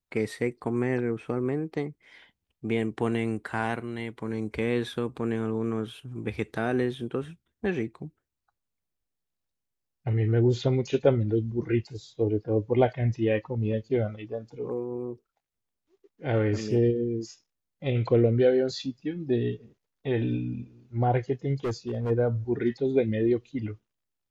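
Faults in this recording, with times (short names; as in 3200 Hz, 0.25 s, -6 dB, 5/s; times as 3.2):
21.64–22.11 clipped -25.5 dBFS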